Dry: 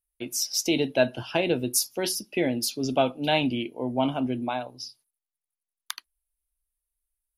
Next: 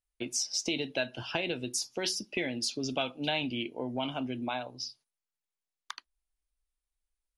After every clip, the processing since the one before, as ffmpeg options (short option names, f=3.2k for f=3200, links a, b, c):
-filter_complex "[0:a]lowpass=f=8.1k:w=0.5412,lowpass=f=8.1k:w=1.3066,acrossover=split=1500[a][b];[a]acompressor=threshold=-32dB:ratio=6[c];[b]alimiter=limit=-21dB:level=0:latency=1:release=278[d];[c][d]amix=inputs=2:normalize=0"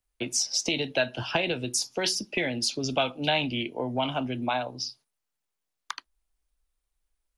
-filter_complex "[0:a]acrossover=split=210|430|1600[a][b][c][d];[b]acompressor=threshold=-49dB:ratio=6[e];[d]tremolo=f=230:d=0.667[f];[a][e][c][f]amix=inputs=4:normalize=0,volume=8dB"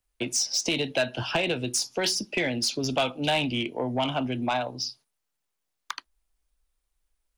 -af "asoftclip=type=tanh:threshold=-19dB,volume=2.5dB"